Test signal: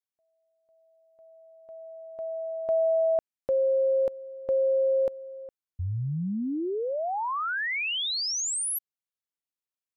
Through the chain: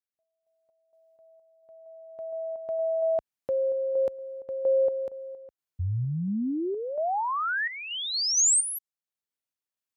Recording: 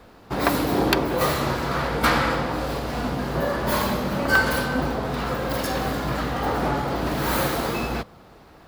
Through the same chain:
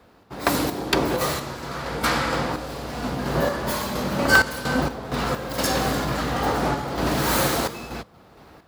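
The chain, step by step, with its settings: HPF 50 Hz; dynamic EQ 7200 Hz, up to +7 dB, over -45 dBFS, Q 0.79; random-step tremolo 4.3 Hz, depth 75%; gain +2.5 dB

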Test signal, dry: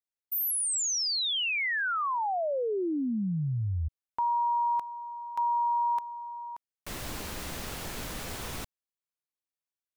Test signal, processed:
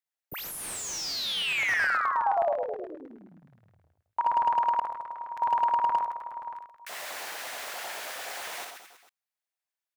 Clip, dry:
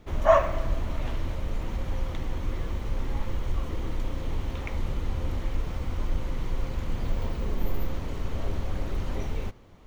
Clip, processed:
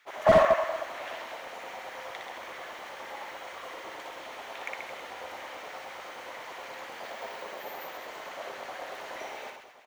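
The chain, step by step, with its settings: LFO high-pass square 9.5 Hz 690–1700 Hz; reverse bouncing-ball echo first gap 60 ms, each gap 1.2×, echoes 5; slew limiter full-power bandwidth 150 Hz; gain -1.5 dB

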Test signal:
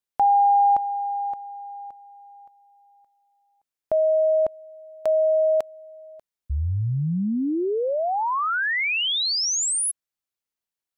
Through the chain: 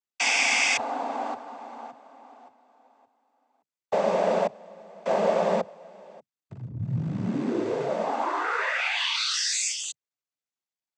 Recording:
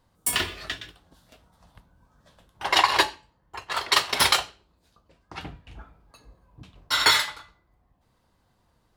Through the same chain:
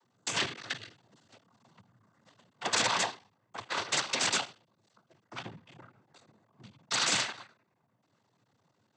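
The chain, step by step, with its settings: cycle switcher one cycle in 3, muted; wrapped overs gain 15.5 dB; noise vocoder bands 16; gain -1.5 dB

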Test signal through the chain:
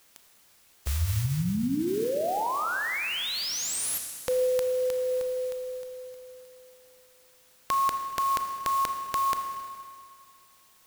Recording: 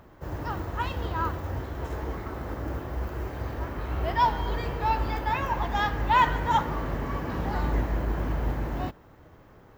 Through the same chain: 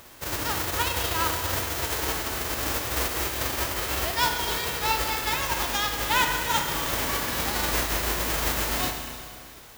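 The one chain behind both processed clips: spectral whitening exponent 0.3; short-mantissa float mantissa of 4-bit; Schroeder reverb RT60 2.1 s, combs from 26 ms, DRR 5.5 dB; vocal rider within 3 dB 0.5 s; requantised 10-bit, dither triangular

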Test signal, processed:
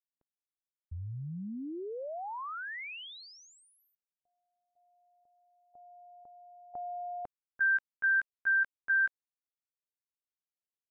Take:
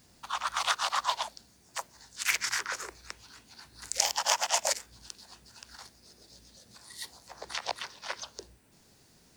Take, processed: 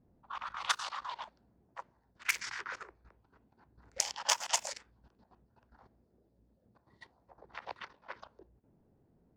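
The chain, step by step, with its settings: dynamic EQ 670 Hz, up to -6 dB, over -48 dBFS, Q 3.1; level quantiser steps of 13 dB; low-pass opened by the level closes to 550 Hz, open at -29.5 dBFS

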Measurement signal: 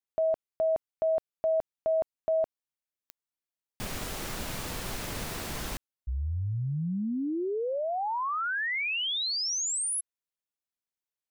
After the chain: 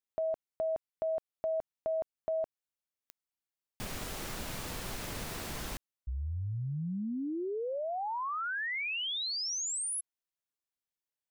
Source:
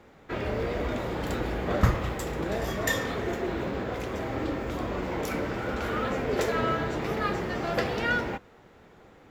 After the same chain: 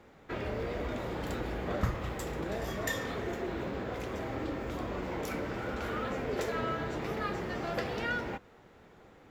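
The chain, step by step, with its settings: compressor 1.5:1, threshold -33 dBFS; gain -3 dB

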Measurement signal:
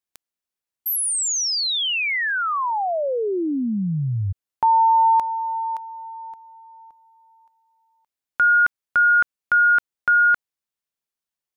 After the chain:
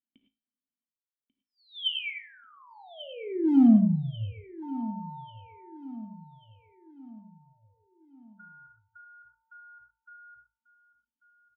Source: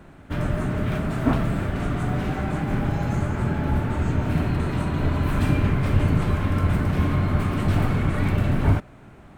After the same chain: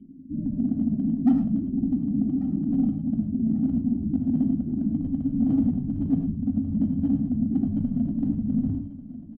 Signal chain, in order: notches 60/120 Hz; spectral gate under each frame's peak -10 dB strong; vocal tract filter i; in parallel at -5 dB: wavefolder -27 dBFS; on the sum: resonator 54 Hz, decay 0.35 s, harmonics all, mix 60%; small resonant body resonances 230/3100 Hz, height 15 dB, ringing for 50 ms; soft clip -10 dBFS; on a send: feedback echo 1.141 s, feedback 45%, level -16 dB; on the sum: non-linear reverb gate 0.13 s rising, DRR 5.5 dB

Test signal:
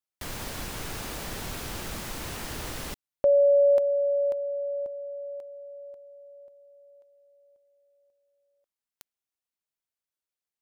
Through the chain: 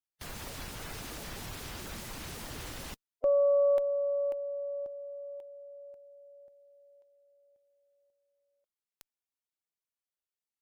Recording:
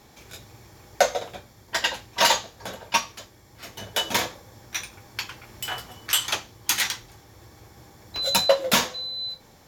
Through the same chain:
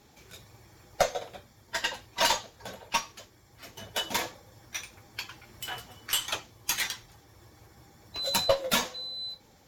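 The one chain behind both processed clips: bin magnitudes rounded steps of 15 dB; added harmonics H 2 -12 dB, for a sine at -5 dBFS; gain -5.5 dB

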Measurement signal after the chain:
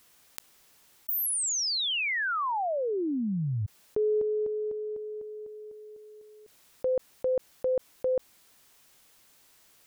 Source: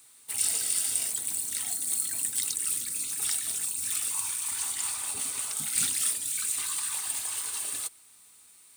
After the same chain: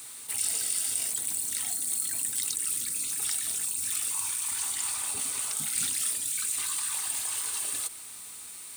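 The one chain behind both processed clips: fast leveller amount 50%; gain -3.5 dB

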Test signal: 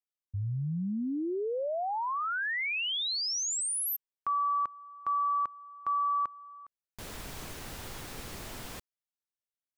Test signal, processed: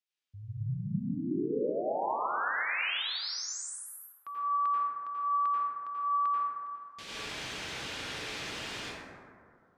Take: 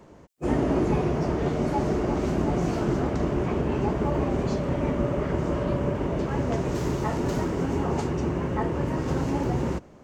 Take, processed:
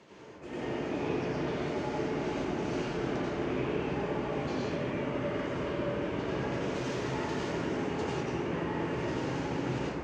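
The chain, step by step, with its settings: weighting filter D; reverse; compressor 6:1, threshold -34 dBFS; reverse; air absorption 55 m; plate-style reverb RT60 2.2 s, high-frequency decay 0.3×, pre-delay 75 ms, DRR -8 dB; gain -5.5 dB

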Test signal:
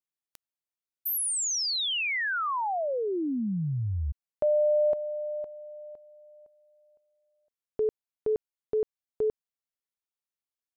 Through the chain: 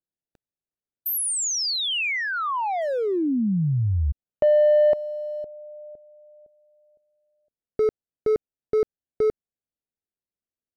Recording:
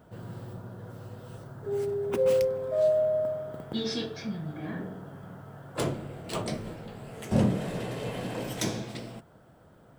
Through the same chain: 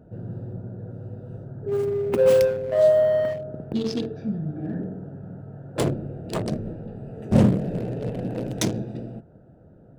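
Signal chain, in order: Wiener smoothing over 41 samples; gain +7.5 dB

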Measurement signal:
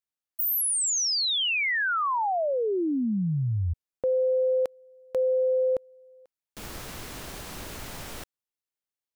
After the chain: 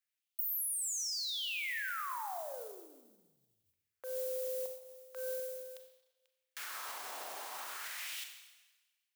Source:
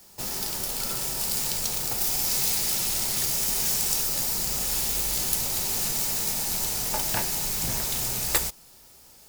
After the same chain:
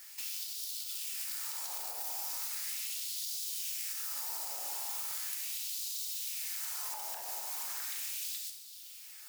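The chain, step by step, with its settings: soft clip -12 dBFS; LFO high-pass sine 0.38 Hz 730–3800 Hz; compressor 5:1, threshold -39 dBFS; tilt -4 dB/oct; limiter -38.5 dBFS; notches 50/100 Hz; Schroeder reverb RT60 1.2 s, combs from 29 ms, DRR 5.5 dB; modulation noise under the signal 24 dB; RIAA curve recording

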